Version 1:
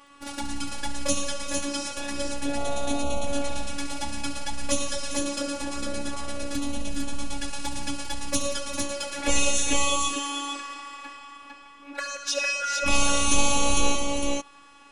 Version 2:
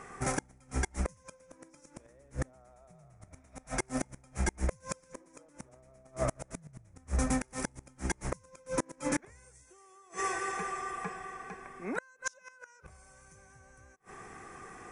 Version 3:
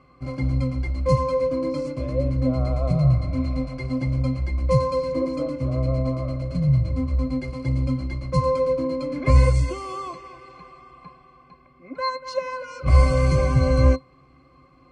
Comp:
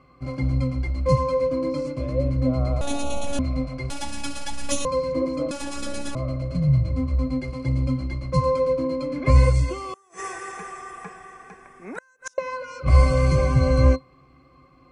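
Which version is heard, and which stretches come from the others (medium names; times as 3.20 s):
3
2.81–3.39 s: from 1
3.90–4.85 s: from 1
5.51–6.15 s: from 1
9.94–12.38 s: from 2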